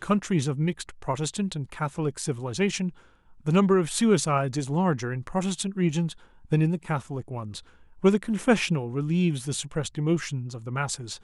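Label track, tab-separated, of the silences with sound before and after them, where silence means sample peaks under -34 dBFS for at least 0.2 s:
2.890000	3.470000	silence
6.120000	6.520000	silence
7.590000	8.040000	silence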